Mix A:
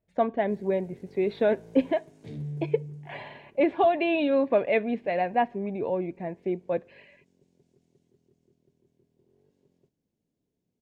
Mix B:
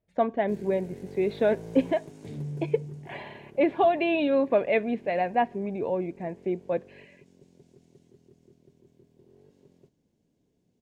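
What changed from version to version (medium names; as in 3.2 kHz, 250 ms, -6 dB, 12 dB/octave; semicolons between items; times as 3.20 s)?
first sound +9.0 dB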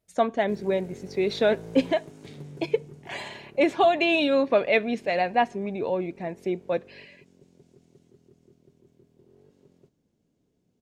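speech: remove distance through air 470 m; second sound: add tilt shelf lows -9 dB, about 1.1 kHz; master: add peaking EQ 1.3 kHz +7 dB 0.23 oct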